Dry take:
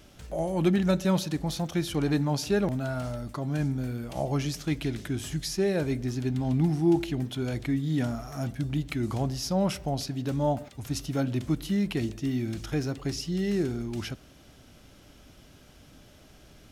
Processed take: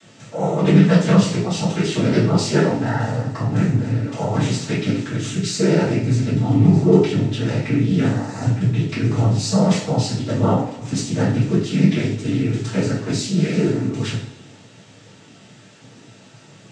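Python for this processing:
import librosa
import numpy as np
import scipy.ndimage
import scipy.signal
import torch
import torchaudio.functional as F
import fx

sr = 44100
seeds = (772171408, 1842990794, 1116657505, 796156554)

y = fx.noise_vocoder(x, sr, seeds[0], bands=12)
y = fx.rev_double_slope(y, sr, seeds[1], early_s=0.46, late_s=1.6, knee_db=-18, drr_db=-8.0)
y = y * librosa.db_to_amplitude(1.5)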